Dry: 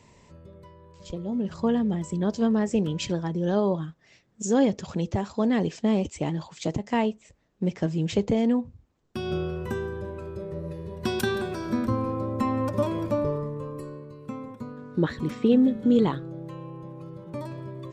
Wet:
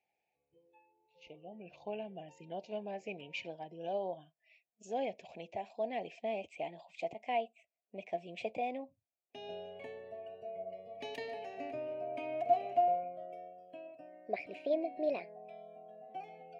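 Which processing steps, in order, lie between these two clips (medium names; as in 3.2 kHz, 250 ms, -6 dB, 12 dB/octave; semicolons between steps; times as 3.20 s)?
gliding tape speed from 85% -> 131%; two resonant band-passes 1.3 kHz, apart 1.8 oct; spectral noise reduction 16 dB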